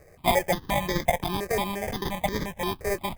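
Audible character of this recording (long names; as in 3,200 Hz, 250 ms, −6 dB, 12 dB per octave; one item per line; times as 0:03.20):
aliases and images of a low sample rate 1,400 Hz, jitter 0%
notches that jump at a steady rate 5.7 Hz 920–2,700 Hz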